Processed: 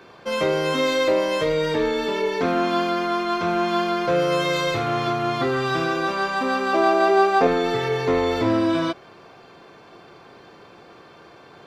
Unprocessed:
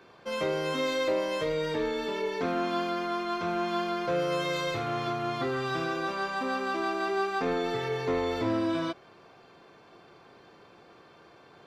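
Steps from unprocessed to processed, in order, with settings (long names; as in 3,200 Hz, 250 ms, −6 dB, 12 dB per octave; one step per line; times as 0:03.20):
0:06.73–0:07.47: parametric band 600 Hz +11 dB 0.9 octaves
level +8 dB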